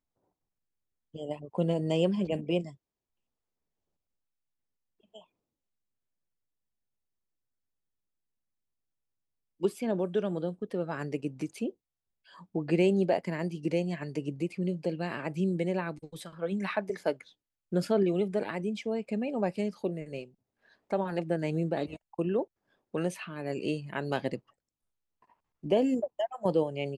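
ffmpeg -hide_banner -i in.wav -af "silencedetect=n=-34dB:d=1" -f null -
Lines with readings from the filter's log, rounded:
silence_start: 0.00
silence_end: 1.16 | silence_duration: 1.16
silence_start: 2.66
silence_end: 9.63 | silence_duration: 6.97
silence_start: 24.36
silence_end: 25.65 | silence_duration: 1.28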